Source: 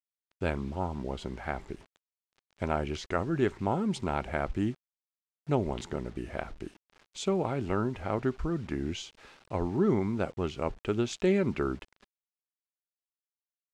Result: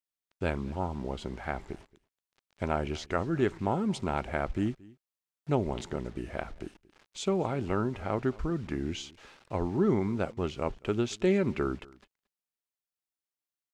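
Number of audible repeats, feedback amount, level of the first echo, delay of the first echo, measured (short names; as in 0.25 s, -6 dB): 1, no steady repeat, -23.0 dB, 0.227 s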